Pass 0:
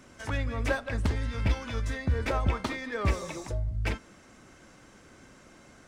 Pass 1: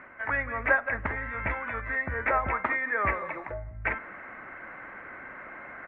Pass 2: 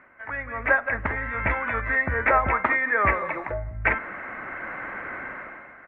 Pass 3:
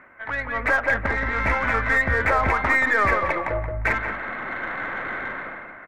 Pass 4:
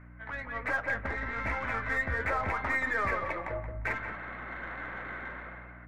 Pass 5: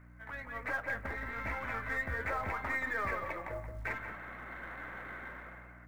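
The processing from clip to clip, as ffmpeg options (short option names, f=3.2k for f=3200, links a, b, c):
-af "firequalizer=gain_entry='entry(420,0);entry(620,6);entry(2000,15);entry(3000,-7);entry(4700,-25)':delay=0.05:min_phase=1,areverse,acompressor=mode=upward:threshold=-31dB:ratio=2.5,areverse,bass=f=250:g=-8,treble=f=4k:g=-15,volume=-2dB"
-af "dynaudnorm=f=120:g=9:m=14.5dB,volume=-5.5dB"
-filter_complex "[0:a]alimiter=limit=-15.5dB:level=0:latency=1:release=28,aeval=exprs='0.168*(cos(1*acos(clip(val(0)/0.168,-1,1)))-cos(1*PI/2))+0.00473*(cos(4*acos(clip(val(0)/0.168,-1,1)))-cos(4*PI/2))+0.00299*(cos(8*acos(clip(val(0)/0.168,-1,1)))-cos(8*PI/2))':c=same,asplit=2[a][b];[b]adelay=176,lowpass=f=2.2k:p=1,volume=-7dB,asplit=2[c][d];[d]adelay=176,lowpass=f=2.2k:p=1,volume=0.25,asplit=2[e][f];[f]adelay=176,lowpass=f=2.2k:p=1,volume=0.25[g];[a][c][e][g]amix=inputs=4:normalize=0,volume=4dB"
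-af "aeval=exprs='val(0)+0.0126*(sin(2*PI*60*n/s)+sin(2*PI*2*60*n/s)/2+sin(2*PI*3*60*n/s)/3+sin(2*PI*4*60*n/s)/4+sin(2*PI*5*60*n/s)/5)':c=same,flanger=delay=9.8:depth=2.3:regen=-54:speed=1.2:shape=sinusoidal,volume=-6.5dB"
-af "acrusher=bits=8:mode=log:mix=0:aa=0.000001,volume=-5dB"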